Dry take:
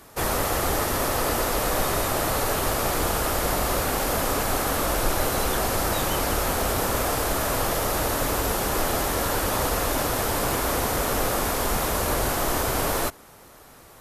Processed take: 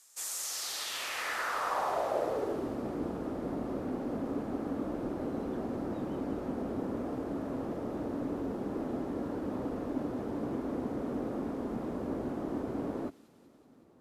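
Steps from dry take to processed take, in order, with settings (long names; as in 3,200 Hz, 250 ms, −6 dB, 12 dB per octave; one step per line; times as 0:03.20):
band-pass filter sweep 7,300 Hz → 260 Hz, 0:00.36–0:02.71
delay with a high-pass on its return 188 ms, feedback 69%, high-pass 3,800 Hz, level −6.5 dB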